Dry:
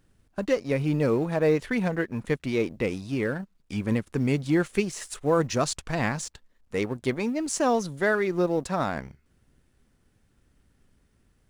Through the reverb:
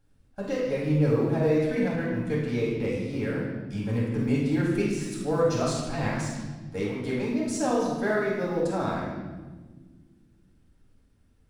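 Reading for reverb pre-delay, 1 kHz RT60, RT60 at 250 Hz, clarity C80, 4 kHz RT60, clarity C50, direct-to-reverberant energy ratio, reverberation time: 4 ms, 1.2 s, 2.7 s, 3.0 dB, 1.1 s, 0.0 dB, −6.0 dB, 1.5 s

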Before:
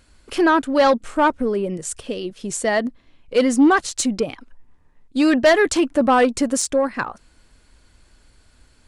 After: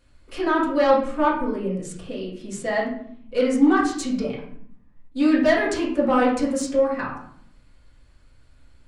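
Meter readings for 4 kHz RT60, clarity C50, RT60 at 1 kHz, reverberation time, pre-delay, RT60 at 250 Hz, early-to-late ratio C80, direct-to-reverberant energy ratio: 0.40 s, 4.0 dB, 0.60 s, 0.65 s, 4 ms, 1.0 s, 8.5 dB, −6.5 dB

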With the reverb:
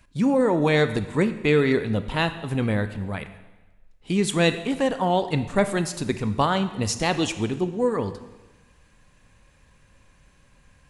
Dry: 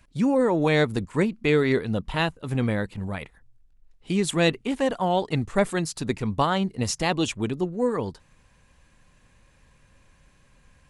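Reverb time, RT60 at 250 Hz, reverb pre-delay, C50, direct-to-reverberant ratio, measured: 1.2 s, 1.2 s, 7 ms, 12.0 dB, 10.0 dB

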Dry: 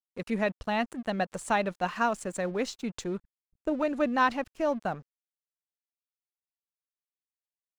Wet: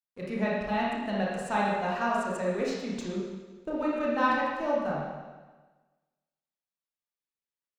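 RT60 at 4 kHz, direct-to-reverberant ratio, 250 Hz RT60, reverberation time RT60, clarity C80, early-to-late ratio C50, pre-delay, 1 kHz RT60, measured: 1.3 s, −5.5 dB, 1.3 s, 1.3 s, 2.0 dB, −1.5 dB, 26 ms, 1.3 s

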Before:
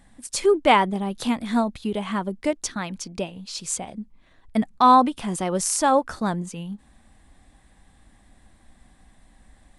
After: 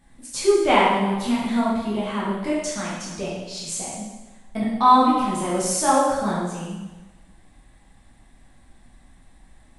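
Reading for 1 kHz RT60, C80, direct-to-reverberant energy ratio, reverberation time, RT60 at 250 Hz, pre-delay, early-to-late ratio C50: 1.2 s, 2.0 dB, −7.0 dB, 1.2 s, 1.2 s, 6 ms, 0.0 dB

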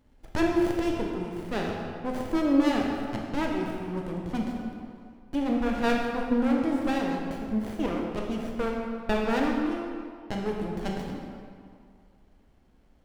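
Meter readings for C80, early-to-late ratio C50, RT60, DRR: 3.0 dB, 1.5 dB, 2.2 s, −0.5 dB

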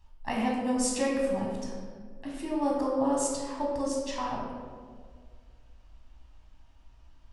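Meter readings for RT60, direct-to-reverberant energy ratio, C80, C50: 1.8 s, −3.5 dB, 3.0 dB, 0.5 dB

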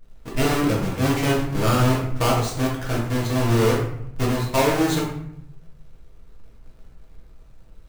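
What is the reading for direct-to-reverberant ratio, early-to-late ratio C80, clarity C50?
−5.5 dB, 7.0 dB, 3.5 dB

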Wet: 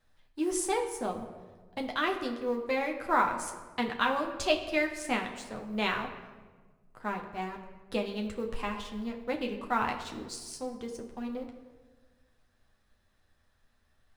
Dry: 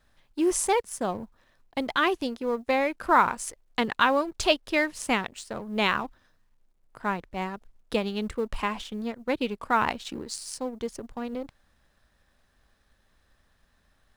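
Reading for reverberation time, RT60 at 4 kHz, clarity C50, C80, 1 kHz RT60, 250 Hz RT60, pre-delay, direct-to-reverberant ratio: 1.4 s, 0.90 s, 8.5 dB, 10.0 dB, 1.2 s, 2.1 s, 8 ms, 1.0 dB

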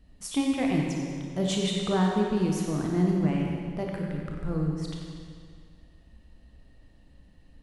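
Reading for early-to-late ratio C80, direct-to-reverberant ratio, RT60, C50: 1.5 dB, −1.0 dB, 2.1 s, 0.0 dB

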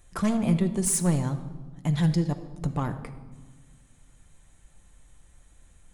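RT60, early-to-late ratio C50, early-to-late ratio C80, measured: 1.4 s, 11.5 dB, 13.5 dB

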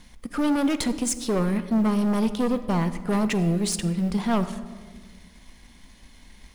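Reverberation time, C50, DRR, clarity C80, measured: 1.6 s, 12.5 dB, 10.0 dB, 14.0 dB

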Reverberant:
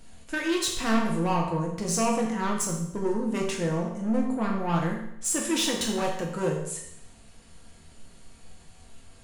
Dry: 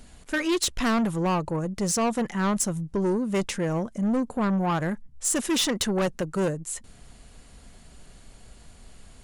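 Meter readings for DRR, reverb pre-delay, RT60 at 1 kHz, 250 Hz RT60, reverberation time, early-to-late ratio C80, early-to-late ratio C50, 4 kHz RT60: −2.0 dB, 4 ms, 0.75 s, 0.75 s, 0.75 s, 7.5 dB, 4.5 dB, 0.75 s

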